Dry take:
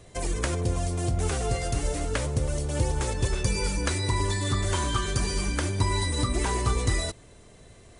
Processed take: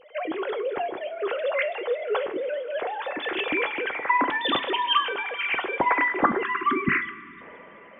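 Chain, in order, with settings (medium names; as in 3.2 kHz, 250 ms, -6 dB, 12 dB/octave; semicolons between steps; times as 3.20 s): formants replaced by sine waves; two-slope reverb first 0.27 s, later 4.8 s, from -20 dB, DRR 9 dB; spectral selection erased 6.44–7.41 s, 430–1000 Hz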